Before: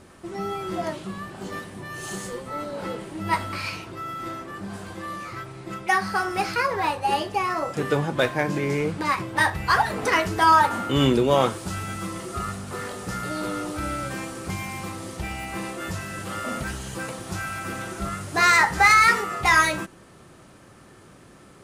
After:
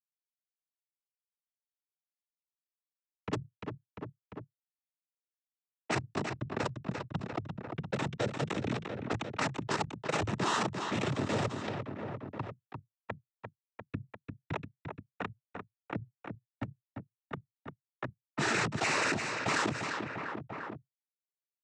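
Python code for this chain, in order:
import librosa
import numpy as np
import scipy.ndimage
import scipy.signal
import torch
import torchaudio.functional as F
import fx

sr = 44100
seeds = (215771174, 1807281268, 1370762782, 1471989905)

y = fx.rattle_buzz(x, sr, strikes_db=-26.0, level_db=-16.0)
y = scipy.signal.sosfilt(scipy.signal.butter(2, 4600.0, 'lowpass', fs=sr, output='sos'), y)
y = fx.env_lowpass(y, sr, base_hz=2000.0, full_db=-19.5)
y = scipy.signal.sosfilt(scipy.signal.butter(4, 420.0, 'highpass', fs=sr, output='sos'), y)
y = fx.dynamic_eq(y, sr, hz=830.0, q=0.88, threshold_db=-34.0, ratio=4.0, max_db=-7)
y = fx.schmitt(y, sr, flips_db=-20.0)
y = fx.noise_vocoder(y, sr, seeds[0], bands=12)
y = fx.echo_feedback(y, sr, ms=347, feedback_pct=43, wet_db=-20)
y = fx.env_lowpass(y, sr, base_hz=1500.0, full_db=-34.5)
y = fx.env_flatten(y, sr, amount_pct=70)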